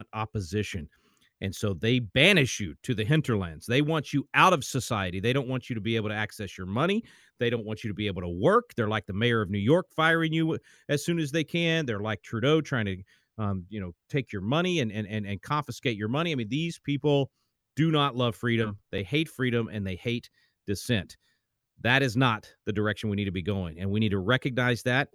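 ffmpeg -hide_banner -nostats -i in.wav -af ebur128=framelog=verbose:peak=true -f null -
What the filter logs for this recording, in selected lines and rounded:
Integrated loudness:
  I:         -27.4 LUFS
  Threshold: -37.7 LUFS
Loudness range:
  LRA:         4.3 LU
  Threshold: -47.7 LUFS
  LRA low:   -29.9 LUFS
  LRA high:  -25.6 LUFS
True peak:
  Peak:       -5.6 dBFS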